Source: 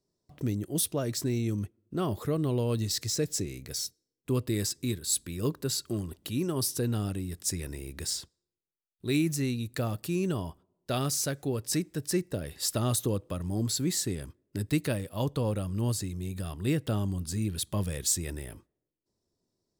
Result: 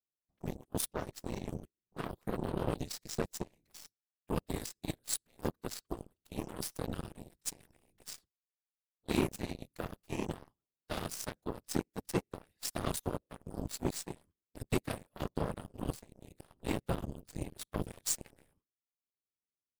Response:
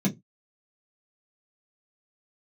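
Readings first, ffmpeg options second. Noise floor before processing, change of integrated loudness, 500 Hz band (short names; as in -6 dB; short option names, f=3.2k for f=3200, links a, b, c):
under -85 dBFS, -8.5 dB, -7.0 dB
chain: -af "afftfilt=real='hypot(re,im)*cos(2*PI*random(0))':imag='hypot(re,im)*sin(2*PI*random(1))':win_size=512:overlap=0.75,aeval=exprs='0.119*(cos(1*acos(clip(val(0)/0.119,-1,1)))-cos(1*PI/2))+0.00106*(cos(5*acos(clip(val(0)/0.119,-1,1)))-cos(5*PI/2))+0.00299*(cos(6*acos(clip(val(0)/0.119,-1,1)))-cos(6*PI/2))+0.0188*(cos(7*acos(clip(val(0)/0.119,-1,1)))-cos(7*PI/2))':c=same,volume=2dB"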